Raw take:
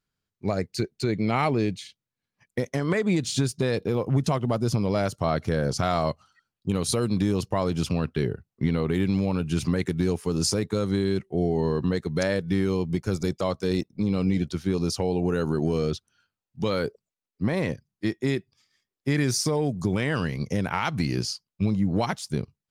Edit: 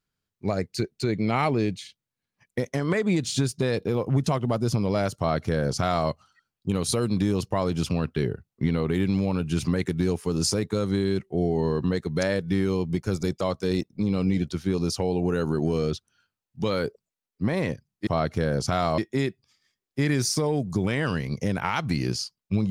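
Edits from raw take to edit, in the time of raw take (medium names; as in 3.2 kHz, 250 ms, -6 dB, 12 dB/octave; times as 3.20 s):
5.18–6.09 s: copy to 18.07 s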